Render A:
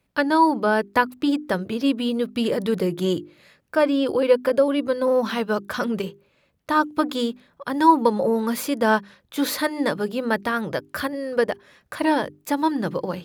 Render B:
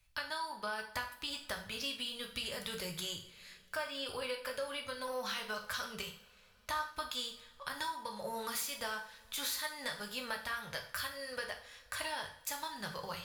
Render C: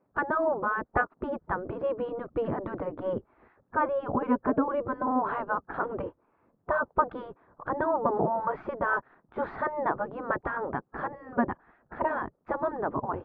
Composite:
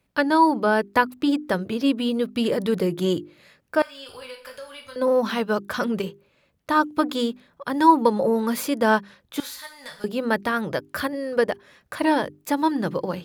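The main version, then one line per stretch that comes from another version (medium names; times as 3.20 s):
A
3.82–4.96 s: from B
9.40–10.04 s: from B
not used: C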